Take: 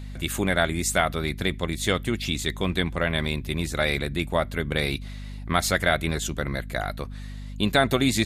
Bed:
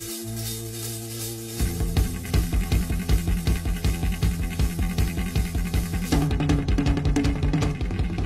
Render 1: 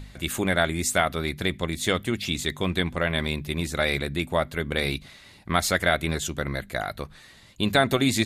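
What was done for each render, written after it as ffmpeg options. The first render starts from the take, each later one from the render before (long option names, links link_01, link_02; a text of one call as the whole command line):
ffmpeg -i in.wav -af "bandreject=frequency=50:width_type=h:width=4,bandreject=frequency=100:width_type=h:width=4,bandreject=frequency=150:width_type=h:width=4,bandreject=frequency=200:width_type=h:width=4,bandreject=frequency=250:width_type=h:width=4" out.wav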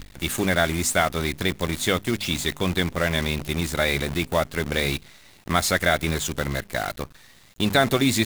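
ffmpeg -i in.wav -filter_complex "[0:a]asplit=2[link_01][link_02];[link_02]asoftclip=type=hard:threshold=-21dB,volume=-10dB[link_03];[link_01][link_03]amix=inputs=2:normalize=0,acrusher=bits=6:dc=4:mix=0:aa=0.000001" out.wav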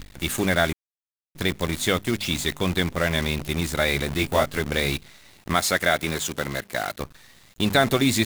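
ffmpeg -i in.wav -filter_complex "[0:a]asettb=1/sr,asplit=3[link_01][link_02][link_03];[link_01]atrim=end=4.164[link_04];[link_02]atrim=start=4.16:end=4.6,asetpts=PTS-STARTPTS,afade=type=in:duration=0.004:curve=qsin,afade=type=out:start_time=0.436:duration=0.004:curve=qsin,asplit=2[link_05][link_06];[link_06]adelay=21,volume=-2dB[link_07];[link_05][link_07]amix=inputs=2:normalize=0,atrim=end_sample=19404[link_08];[link_03]atrim=start=4.596[link_09];[link_04][link_08]acrossfade=duration=0.004:curve1=hsin:curve2=qsin[link_10];[link_10][link_09]acrossfade=duration=0.004:curve1=qsin:curve2=hsin,asettb=1/sr,asplit=3[link_11][link_12][link_13];[link_11]atrim=end=5.544[link_14];[link_12]atrim=start=5.54:end=7,asetpts=PTS-STARTPTS,afade=type=in:duration=0.004:curve=qsin,afade=type=out:start_time=1.456:duration=0.004:curve=qsin,highpass=frequency=190:poles=1[link_15];[link_13]atrim=start=6.996[link_16];[link_14][link_15]acrossfade=duration=0.004:curve1=hsin:curve2=qsin[link_17];[link_17][link_16]acrossfade=duration=0.004:curve1=qsin:curve2=hsin,asplit=3[link_18][link_19][link_20];[link_18]atrim=end=0.73,asetpts=PTS-STARTPTS,afade=type=out:start_time=0.726:duration=0.004:curve=hsin[link_21];[link_19]atrim=start=0.73:end=1.35,asetpts=PTS-STARTPTS,volume=0[link_22];[link_20]atrim=start=1.35,asetpts=PTS-STARTPTS,afade=type=in:duration=0.004:curve=hsin[link_23];[link_21][link_22][link_23]concat=n=3:v=0:a=1" out.wav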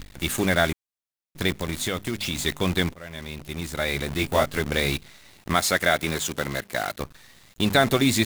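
ffmpeg -i in.wav -filter_complex "[0:a]asettb=1/sr,asplit=3[link_01][link_02][link_03];[link_01]atrim=end=1.514[link_04];[link_02]atrim=start=1.51:end=2.38,asetpts=PTS-STARTPTS,afade=type=in:duration=0.004:curve=qsin,afade=type=out:start_time=0.866:duration=0.004:curve=qsin,acompressor=threshold=-24dB:ratio=3:attack=3.2:release=140:knee=1:detection=peak[link_05];[link_03]atrim=start=2.376[link_06];[link_04][link_05]acrossfade=duration=0.004:curve1=hsin:curve2=qsin[link_07];[link_07][link_06]acrossfade=duration=0.004:curve1=qsin:curve2=hsin,asplit=2[link_08][link_09];[link_08]atrim=end=2.94,asetpts=PTS-STARTPTS,afade=type=out:start_time=2.936:duration=0.004:curve=hsin:silence=0.0841395[link_10];[link_09]atrim=start=2.94,asetpts=PTS-STARTPTS,afade=type=in:duration=1.51:silence=0.0841395[link_11];[link_10][link_11]concat=n=2:v=0:a=1" out.wav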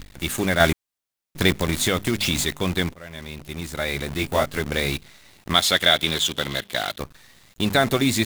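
ffmpeg -i in.wav -filter_complex "[0:a]asettb=1/sr,asplit=3[link_01][link_02][link_03];[link_01]atrim=end=0.604[link_04];[link_02]atrim=start=0.6:end=2.45,asetpts=PTS-STARTPTS,afade=type=in:duration=0.004:curve=qsin,afade=type=out:start_time=1.846:duration=0.004:curve=qsin,acontrast=52[link_05];[link_03]atrim=start=2.446[link_06];[link_04][link_05]acrossfade=duration=0.004:curve1=hsin:curve2=qsin[link_07];[link_07][link_06]acrossfade=duration=0.004:curve1=qsin:curve2=hsin,asettb=1/sr,asplit=3[link_08][link_09][link_10];[link_08]atrim=end=5.544[link_11];[link_09]atrim=start=5.54:end=6.98,asetpts=PTS-STARTPTS,afade=type=in:duration=0.004:curve=qsin,afade=type=out:start_time=1.436:duration=0.004:curve=qsin,equalizer=frequency=3400:width=2.9:gain=14[link_12];[link_10]atrim=start=6.976[link_13];[link_11][link_12]acrossfade=duration=0.004:curve1=hsin:curve2=qsin[link_14];[link_14][link_13]acrossfade=duration=0.004:curve1=qsin:curve2=hsin" out.wav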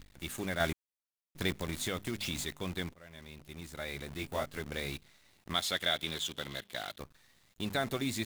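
ffmpeg -i in.wav -af "volume=-14dB" out.wav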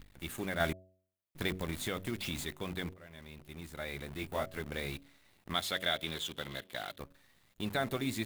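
ffmpeg -i in.wav -af "equalizer=frequency=6000:width_type=o:width=1.3:gain=-5.5,bandreject=frequency=93.11:width_type=h:width=4,bandreject=frequency=186.22:width_type=h:width=4,bandreject=frequency=279.33:width_type=h:width=4,bandreject=frequency=372.44:width_type=h:width=4,bandreject=frequency=465.55:width_type=h:width=4,bandreject=frequency=558.66:width_type=h:width=4,bandreject=frequency=651.77:width_type=h:width=4" out.wav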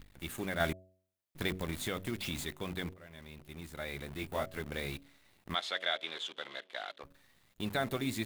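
ffmpeg -i in.wav -filter_complex "[0:a]asplit=3[link_01][link_02][link_03];[link_01]afade=type=out:start_time=5.54:duration=0.02[link_04];[link_02]highpass=470,lowpass=4900,afade=type=in:start_time=5.54:duration=0.02,afade=type=out:start_time=7.03:duration=0.02[link_05];[link_03]afade=type=in:start_time=7.03:duration=0.02[link_06];[link_04][link_05][link_06]amix=inputs=3:normalize=0" out.wav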